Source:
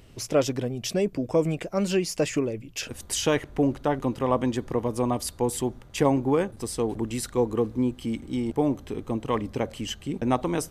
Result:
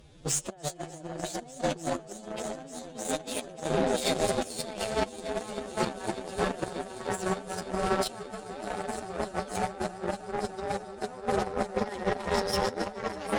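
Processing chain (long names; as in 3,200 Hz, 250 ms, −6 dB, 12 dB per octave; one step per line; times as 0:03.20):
gliding playback speed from 124% → 180%
in parallel at 0 dB: output level in coarse steps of 10 dB
on the sum: comb and all-pass reverb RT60 4.6 s, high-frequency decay 0.4×, pre-delay 30 ms, DRR 6.5 dB
brickwall limiter −14 dBFS, peak gain reduction 10 dB
compressor whose output falls as the input rises −29 dBFS, ratio −0.5
downsampling to 22,050 Hz
on a send: echo that builds up and dies away 157 ms, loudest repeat 5, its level −15 dB
on the sum: phase-vocoder stretch with locked phases 1.9×
harmonic generator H 7 −20 dB, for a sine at −12.5 dBFS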